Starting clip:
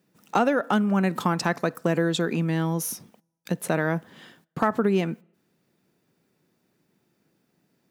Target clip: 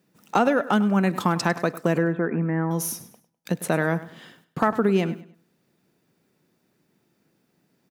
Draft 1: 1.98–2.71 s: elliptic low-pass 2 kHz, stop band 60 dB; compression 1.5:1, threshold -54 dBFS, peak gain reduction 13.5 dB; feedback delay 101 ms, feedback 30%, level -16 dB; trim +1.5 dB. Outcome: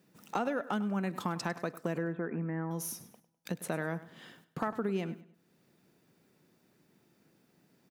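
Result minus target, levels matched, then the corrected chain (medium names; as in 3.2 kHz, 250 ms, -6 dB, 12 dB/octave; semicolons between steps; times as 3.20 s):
compression: peak gain reduction +13.5 dB
1.98–2.71 s: elliptic low-pass 2 kHz, stop band 60 dB; feedback delay 101 ms, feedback 30%, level -16 dB; trim +1.5 dB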